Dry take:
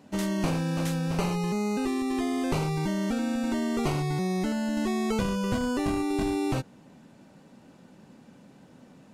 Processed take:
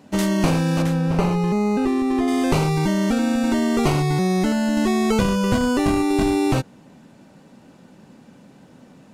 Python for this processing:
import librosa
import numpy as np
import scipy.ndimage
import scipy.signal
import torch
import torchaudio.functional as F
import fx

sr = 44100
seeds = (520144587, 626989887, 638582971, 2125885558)

p1 = fx.high_shelf(x, sr, hz=2700.0, db=-11.0, at=(0.82, 2.28))
p2 = np.sign(p1) * np.maximum(np.abs(p1) - 10.0 ** (-41.0 / 20.0), 0.0)
p3 = p1 + (p2 * librosa.db_to_amplitude(-5.0))
y = p3 * librosa.db_to_amplitude(5.0)